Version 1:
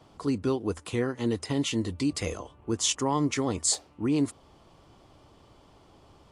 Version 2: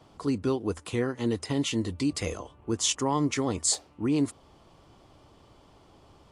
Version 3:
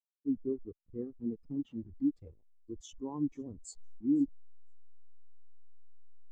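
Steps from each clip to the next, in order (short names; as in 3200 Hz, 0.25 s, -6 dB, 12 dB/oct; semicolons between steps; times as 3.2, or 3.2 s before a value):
nothing audible
level-crossing sampler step -27 dBFS; thin delay 0.507 s, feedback 37%, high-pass 4000 Hz, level -10 dB; spectral expander 2.5:1; gain -8.5 dB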